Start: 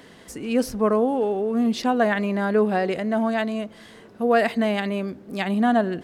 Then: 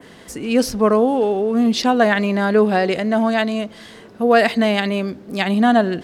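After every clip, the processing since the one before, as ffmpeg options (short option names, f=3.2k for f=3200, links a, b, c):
-af "adynamicequalizer=threshold=0.00708:dfrequency=4500:dqfactor=0.86:tfrequency=4500:tqfactor=0.86:attack=5:release=100:ratio=0.375:range=3:mode=boostabove:tftype=bell,volume=5dB"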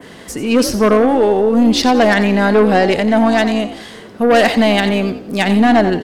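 -filter_complex "[0:a]aeval=exprs='0.794*(cos(1*acos(clip(val(0)/0.794,-1,1)))-cos(1*PI/2))+0.158*(cos(5*acos(clip(val(0)/0.794,-1,1)))-cos(5*PI/2))+0.0398*(cos(8*acos(clip(val(0)/0.794,-1,1)))-cos(8*PI/2))':c=same,asplit=2[a][b];[b]asplit=4[c][d][e][f];[c]adelay=89,afreqshift=57,volume=-12dB[g];[d]adelay=178,afreqshift=114,volume=-21.1dB[h];[e]adelay=267,afreqshift=171,volume=-30.2dB[i];[f]adelay=356,afreqshift=228,volume=-39.4dB[j];[g][h][i][j]amix=inputs=4:normalize=0[k];[a][k]amix=inputs=2:normalize=0"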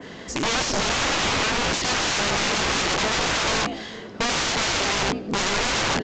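-af "aeval=exprs='(mod(5.96*val(0)+1,2)-1)/5.96':c=same,aresample=16000,aresample=44100,volume=-2dB"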